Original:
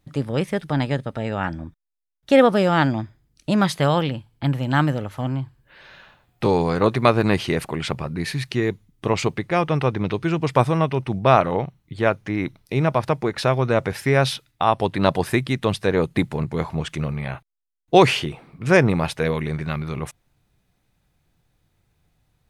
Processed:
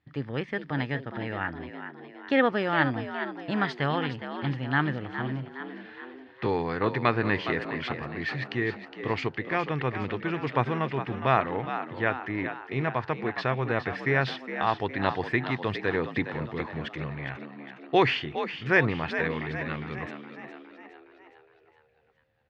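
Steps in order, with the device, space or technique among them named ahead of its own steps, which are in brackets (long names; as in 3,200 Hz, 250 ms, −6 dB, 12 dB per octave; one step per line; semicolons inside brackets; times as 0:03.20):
high-shelf EQ 8,400 Hz +5 dB
notch filter 3,800 Hz, Q 15
frequency-shifting delay pedal into a guitar cabinet (echo with shifted repeats 413 ms, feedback 52%, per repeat +63 Hz, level −10 dB; loudspeaker in its box 78–4,100 Hz, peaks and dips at 180 Hz −7 dB, 580 Hz −6 dB, 1,800 Hz +9 dB)
level −7 dB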